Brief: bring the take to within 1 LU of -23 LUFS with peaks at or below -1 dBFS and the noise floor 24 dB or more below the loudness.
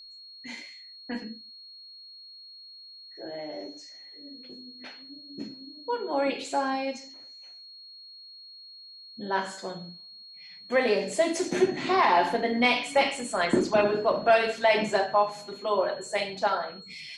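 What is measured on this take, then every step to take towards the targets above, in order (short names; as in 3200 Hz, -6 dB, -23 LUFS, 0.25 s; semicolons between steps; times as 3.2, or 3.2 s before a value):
steady tone 4300 Hz; tone level -45 dBFS; loudness -26.5 LUFS; peak -10.0 dBFS; loudness target -23.0 LUFS
-> notch 4300 Hz, Q 30; gain +3.5 dB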